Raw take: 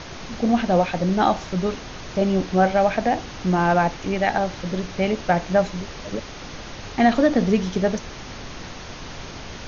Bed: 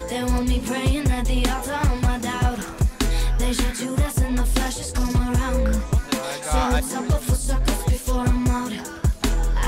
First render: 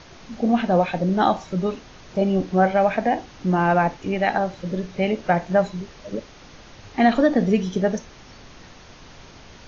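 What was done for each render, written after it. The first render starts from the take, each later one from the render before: noise print and reduce 9 dB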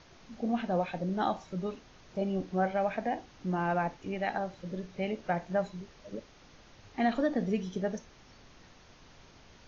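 gain -11.5 dB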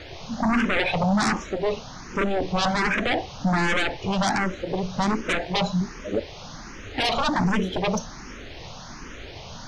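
sine folder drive 16 dB, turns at -16 dBFS; endless phaser +1.3 Hz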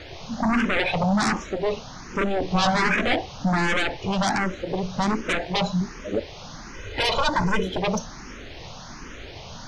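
2.49–3.16 doubler 17 ms -2.5 dB; 6.74–7.67 comb 2 ms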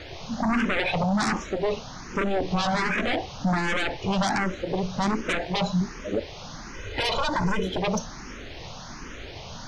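limiter -16.5 dBFS, peak gain reduction 6.5 dB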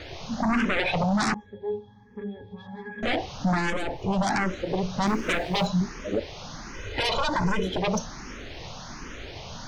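1.34–3.03 octave resonator G#, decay 0.19 s; 3.7–4.27 band shelf 2900 Hz -9 dB 2.6 oct; 5.07–5.67 G.711 law mismatch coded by mu

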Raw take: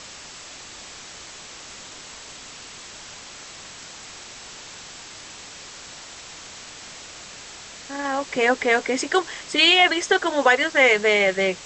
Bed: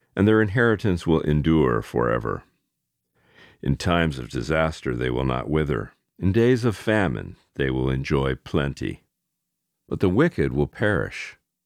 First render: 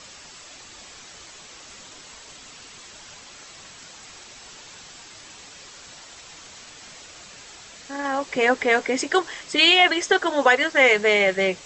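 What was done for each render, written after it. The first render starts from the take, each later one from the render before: denoiser 6 dB, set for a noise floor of -41 dBFS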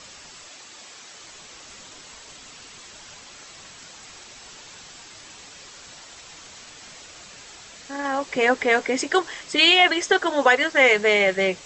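0.48–1.24 HPF 250 Hz 6 dB/oct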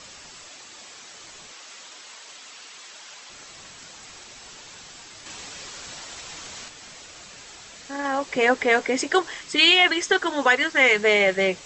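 1.52–3.3 weighting filter A; 5.26–6.68 gain +5 dB; 9.38–11.03 bell 610 Hz -6.5 dB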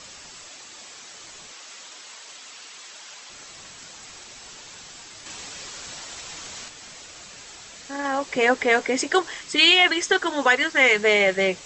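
high shelf 7300 Hz +4 dB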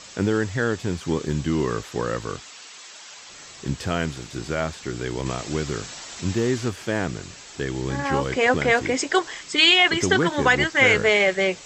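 add bed -4.5 dB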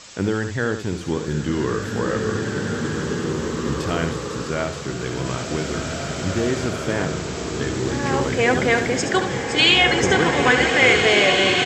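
echo 72 ms -8.5 dB; bloom reverb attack 2.19 s, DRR -0.5 dB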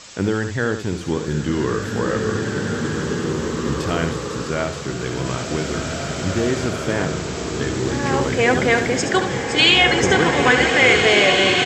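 gain +1.5 dB; limiter -2 dBFS, peak gain reduction 1 dB

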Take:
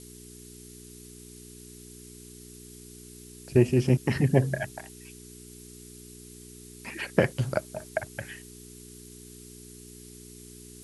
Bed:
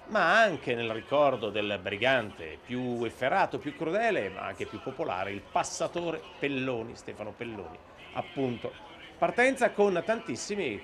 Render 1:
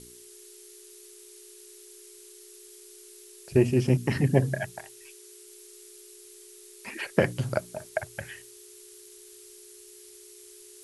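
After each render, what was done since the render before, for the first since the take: de-hum 60 Hz, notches 5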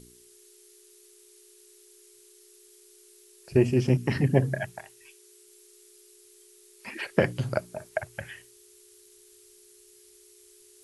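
noise print and reduce 6 dB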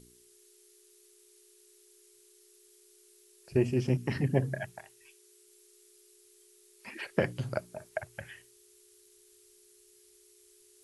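gain -5.5 dB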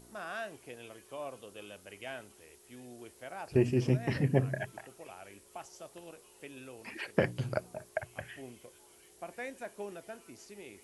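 add bed -17.5 dB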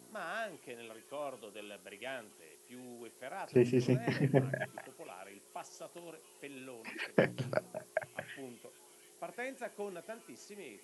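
HPF 140 Hz 24 dB/oct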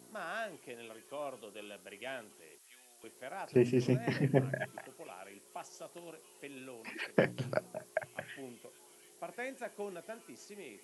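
2.58–3.04 HPF 1200 Hz

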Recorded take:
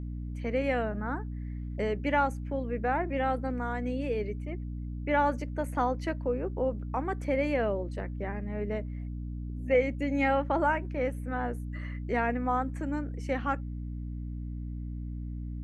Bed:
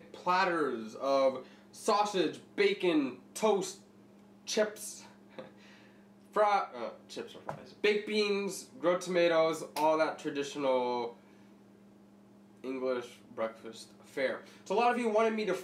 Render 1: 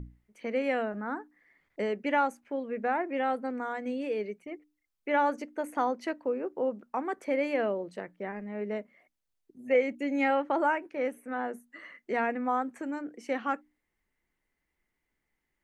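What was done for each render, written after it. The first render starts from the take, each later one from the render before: notches 60/120/180/240/300 Hz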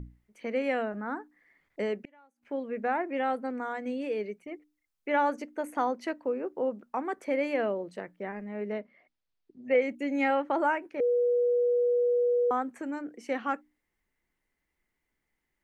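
1.95–2.43 flipped gate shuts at -29 dBFS, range -33 dB; 8.72–9.82 steep low-pass 5300 Hz; 11–12.51 bleep 485 Hz -22 dBFS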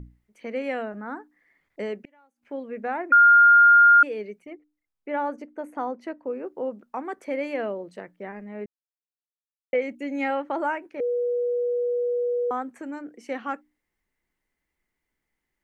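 3.12–4.03 bleep 1410 Hz -10.5 dBFS; 4.53–6.3 high shelf 2100 Hz -11 dB; 8.66–9.73 mute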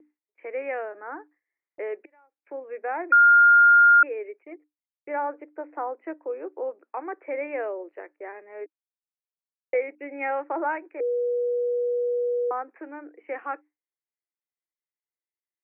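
Chebyshev band-pass 310–2500 Hz, order 5; gate with hold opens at -53 dBFS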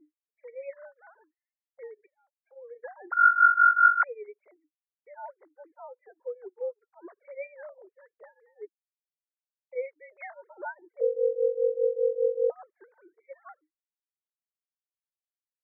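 sine-wave speech; tremolo triangle 5 Hz, depth 95%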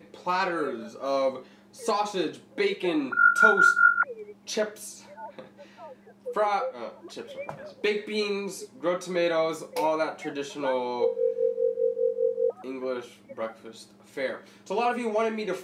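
add bed +2 dB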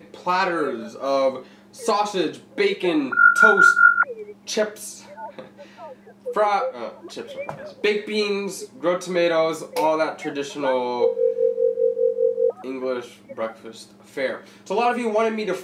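gain +5.5 dB; limiter -2 dBFS, peak gain reduction 1.5 dB

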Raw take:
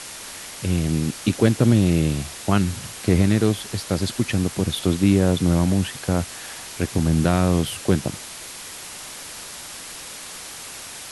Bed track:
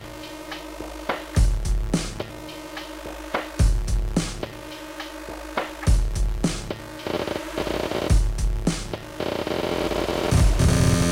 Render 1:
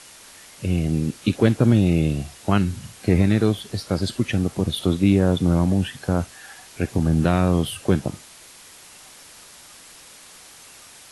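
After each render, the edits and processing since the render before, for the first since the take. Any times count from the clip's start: noise print and reduce 9 dB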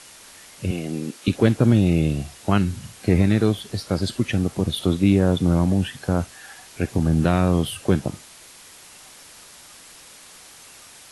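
0.71–1.28 HPF 260 Hz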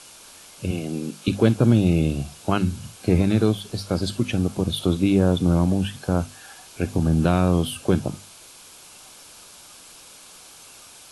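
bell 1900 Hz -13 dB 0.2 oct; notches 50/100/150/200/250 Hz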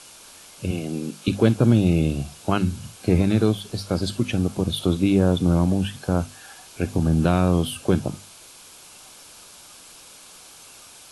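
nothing audible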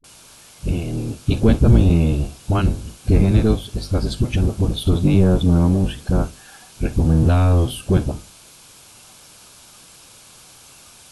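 octaver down 1 oct, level +4 dB; dispersion highs, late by 42 ms, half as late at 320 Hz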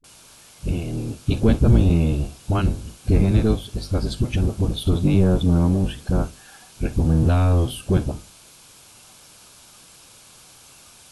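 gain -2.5 dB

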